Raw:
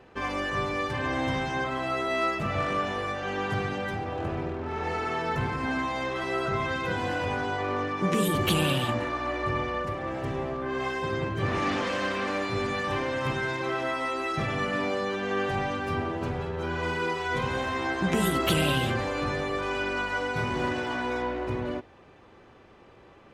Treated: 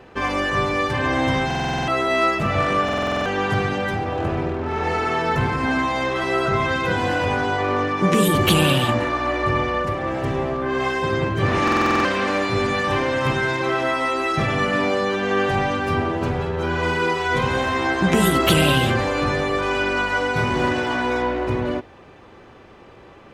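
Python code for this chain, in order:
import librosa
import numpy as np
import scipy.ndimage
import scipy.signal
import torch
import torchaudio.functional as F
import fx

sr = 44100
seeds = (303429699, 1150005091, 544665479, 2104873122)

y = fx.buffer_glitch(x, sr, at_s=(1.46, 2.84, 11.63), block=2048, repeats=8)
y = F.gain(torch.from_numpy(y), 8.0).numpy()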